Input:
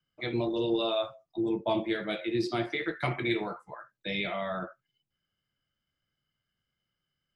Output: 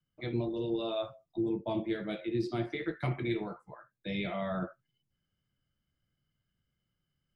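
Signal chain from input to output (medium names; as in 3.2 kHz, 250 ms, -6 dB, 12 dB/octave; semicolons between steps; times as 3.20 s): bass shelf 390 Hz +11.5 dB; gain riding 0.5 s; trim -8.5 dB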